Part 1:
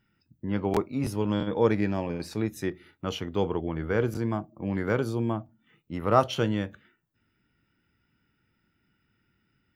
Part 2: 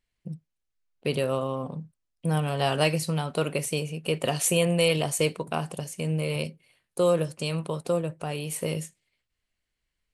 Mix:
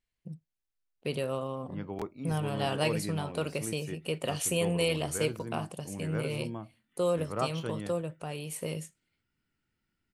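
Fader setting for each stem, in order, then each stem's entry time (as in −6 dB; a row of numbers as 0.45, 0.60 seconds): −11.0, −6.0 decibels; 1.25, 0.00 seconds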